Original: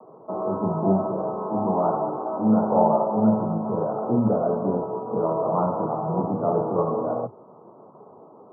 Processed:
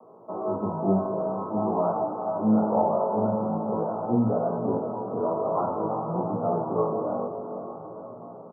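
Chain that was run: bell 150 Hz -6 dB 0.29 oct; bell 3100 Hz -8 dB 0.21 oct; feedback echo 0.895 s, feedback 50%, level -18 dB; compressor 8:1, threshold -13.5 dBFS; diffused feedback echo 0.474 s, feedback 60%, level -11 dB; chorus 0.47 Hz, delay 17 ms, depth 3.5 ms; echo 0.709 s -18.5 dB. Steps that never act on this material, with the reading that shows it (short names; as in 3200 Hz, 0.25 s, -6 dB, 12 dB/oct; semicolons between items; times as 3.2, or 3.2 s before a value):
bell 3100 Hz: input band ends at 1400 Hz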